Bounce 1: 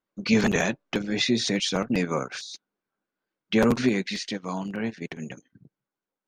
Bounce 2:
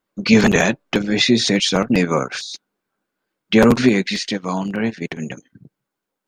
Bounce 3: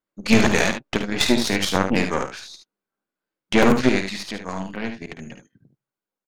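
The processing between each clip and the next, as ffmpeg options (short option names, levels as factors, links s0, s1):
-af "bandreject=f=5900:w=28,volume=2.66"
-filter_complex "[0:a]aeval=exprs='0.891*(cos(1*acos(clip(val(0)/0.891,-1,1)))-cos(1*PI/2))+0.178*(cos(4*acos(clip(val(0)/0.891,-1,1)))-cos(4*PI/2))+0.0282*(cos(5*acos(clip(val(0)/0.891,-1,1)))-cos(5*PI/2))+0.0891*(cos(7*acos(clip(val(0)/0.891,-1,1)))-cos(7*PI/2))':c=same,asplit=2[s0][s1];[s1]aecho=0:1:53|74:0.299|0.376[s2];[s0][s2]amix=inputs=2:normalize=0,volume=0.631"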